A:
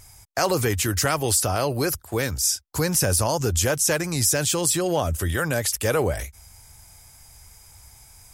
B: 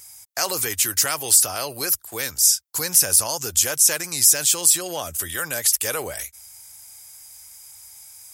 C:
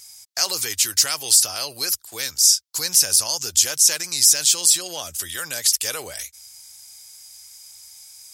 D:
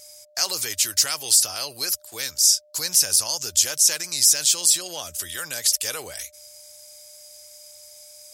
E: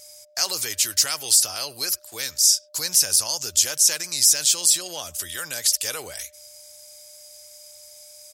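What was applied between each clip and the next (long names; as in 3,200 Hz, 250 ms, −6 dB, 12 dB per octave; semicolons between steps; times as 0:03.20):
spectral tilt +3.5 dB per octave; level −4 dB
parametric band 4,700 Hz +12 dB 1.7 octaves; level −6 dB
steady tone 600 Hz −52 dBFS; level −2 dB
far-end echo of a speakerphone 100 ms, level −26 dB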